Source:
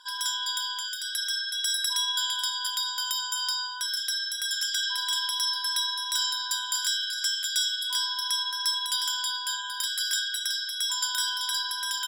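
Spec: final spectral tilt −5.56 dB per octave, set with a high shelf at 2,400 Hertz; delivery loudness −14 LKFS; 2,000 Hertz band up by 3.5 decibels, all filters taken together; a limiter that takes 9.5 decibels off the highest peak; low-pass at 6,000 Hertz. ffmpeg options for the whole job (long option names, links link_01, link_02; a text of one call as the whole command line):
ffmpeg -i in.wav -af "lowpass=6000,equalizer=frequency=2000:width_type=o:gain=8.5,highshelf=frequency=2400:gain=-7,volume=19dB,alimiter=limit=-7.5dB:level=0:latency=1" out.wav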